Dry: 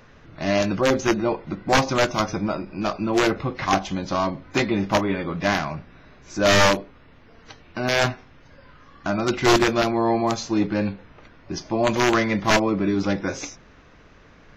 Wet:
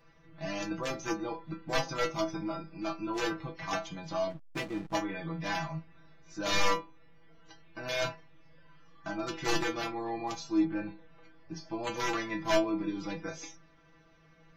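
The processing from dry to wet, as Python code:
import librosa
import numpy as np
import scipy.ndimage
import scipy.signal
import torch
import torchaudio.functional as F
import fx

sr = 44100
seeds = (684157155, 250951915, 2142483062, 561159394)

y = fx.stiff_resonator(x, sr, f0_hz=160.0, decay_s=0.26, stiffness=0.002)
y = fx.backlash(y, sr, play_db=-37.0, at=(4.29, 4.93), fade=0.02)
y = fx.env_lowpass_down(y, sr, base_hz=2300.0, full_db=-32.0, at=(10.64, 11.65))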